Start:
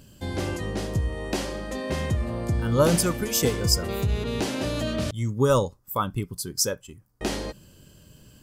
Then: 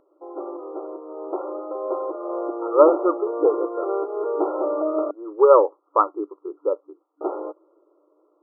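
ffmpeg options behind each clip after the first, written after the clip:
-af "afftfilt=real='re*between(b*sr/4096,300,1400)':imag='im*between(b*sr/4096,300,1400)':win_size=4096:overlap=0.75,dynaudnorm=f=500:g=7:m=11.5dB"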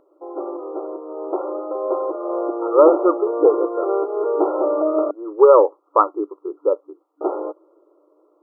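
-af "equalizer=f=500:t=o:w=2.6:g=3,alimiter=level_in=2.5dB:limit=-1dB:release=50:level=0:latency=1,volume=-1dB"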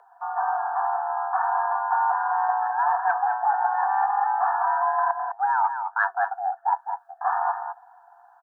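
-af "areverse,acompressor=threshold=-24dB:ratio=12,areverse,afreqshift=390,aecho=1:1:207:0.422,volume=4dB"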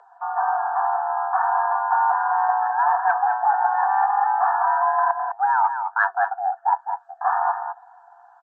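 -af "volume=3.5dB" -ar 24000 -c:a libmp3lame -b:a 32k

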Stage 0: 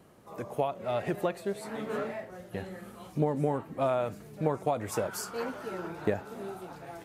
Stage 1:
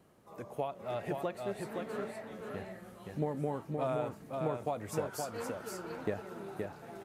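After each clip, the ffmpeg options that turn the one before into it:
-af "aecho=1:1:521:0.631,volume=-6.5dB"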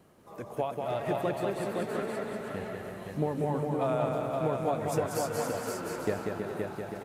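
-af "aecho=1:1:190|323|416.1|481.3|526.9:0.631|0.398|0.251|0.158|0.1,volume=4dB"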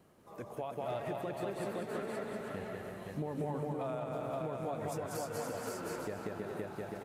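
-af "alimiter=limit=-24dB:level=0:latency=1:release=171,volume=-4dB"

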